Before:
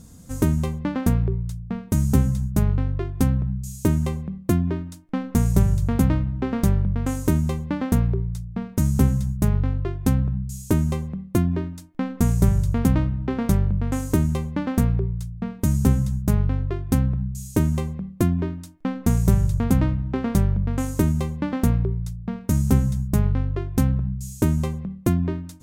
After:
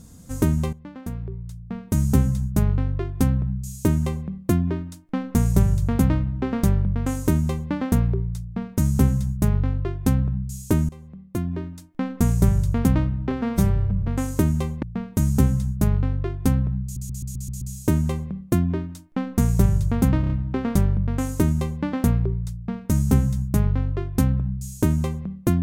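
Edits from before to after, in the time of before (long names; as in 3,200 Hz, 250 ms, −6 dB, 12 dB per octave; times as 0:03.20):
0:00.73–0:01.99: fade in quadratic, from −14.5 dB
0:10.89–0:12.05: fade in linear, from −20 dB
0:13.31–0:13.82: time-stretch 1.5×
0:14.57–0:15.29: remove
0:17.30: stutter 0.13 s, 7 plays
0:19.89: stutter 0.03 s, 4 plays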